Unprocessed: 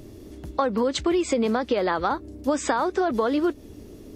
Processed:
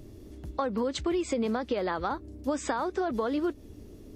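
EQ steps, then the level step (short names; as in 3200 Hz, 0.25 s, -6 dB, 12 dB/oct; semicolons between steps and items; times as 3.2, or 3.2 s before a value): low shelf 140 Hz +6.5 dB; -7.0 dB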